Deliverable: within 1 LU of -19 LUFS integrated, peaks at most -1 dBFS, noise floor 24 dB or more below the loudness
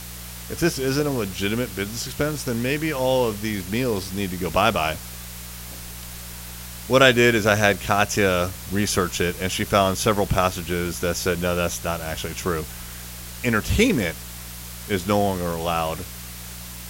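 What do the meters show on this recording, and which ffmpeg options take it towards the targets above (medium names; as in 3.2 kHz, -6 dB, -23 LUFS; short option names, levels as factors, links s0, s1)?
hum 60 Hz; highest harmonic 180 Hz; hum level -37 dBFS; noise floor -37 dBFS; noise floor target -47 dBFS; loudness -22.5 LUFS; peak level -2.0 dBFS; loudness target -19.0 LUFS
-> -af "bandreject=f=60:t=h:w=4,bandreject=f=120:t=h:w=4,bandreject=f=180:t=h:w=4"
-af "afftdn=nr=10:nf=-37"
-af "volume=1.5,alimiter=limit=0.891:level=0:latency=1"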